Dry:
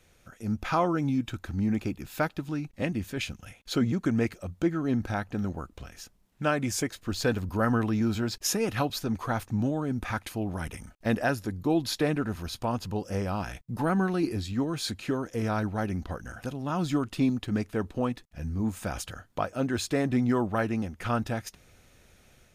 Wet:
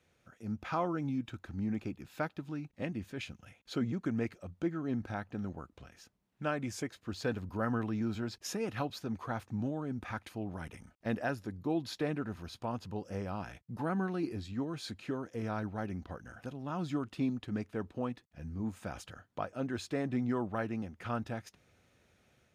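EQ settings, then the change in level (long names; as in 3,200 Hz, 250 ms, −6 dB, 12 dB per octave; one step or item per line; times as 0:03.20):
high-pass filter 80 Hz
low-pass filter 3,900 Hz 6 dB per octave
−7.5 dB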